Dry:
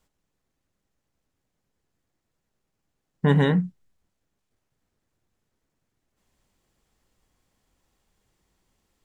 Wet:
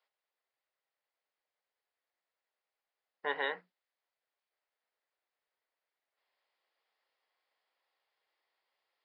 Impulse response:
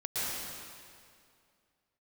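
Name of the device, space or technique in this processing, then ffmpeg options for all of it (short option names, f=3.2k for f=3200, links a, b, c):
musical greeting card: -af "aresample=11025,aresample=44100,highpass=f=530:w=0.5412,highpass=f=530:w=1.3066,equalizer=f=2k:t=o:w=0.34:g=4.5,volume=-7dB"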